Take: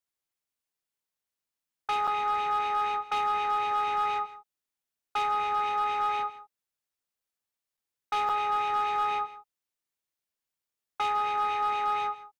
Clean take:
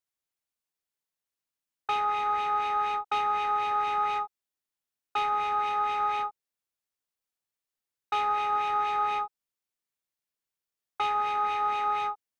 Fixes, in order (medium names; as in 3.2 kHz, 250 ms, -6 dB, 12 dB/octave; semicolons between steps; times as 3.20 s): clip repair -22 dBFS; interpolate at 2.07/7.77/8.29 s, 5.7 ms; inverse comb 161 ms -16.5 dB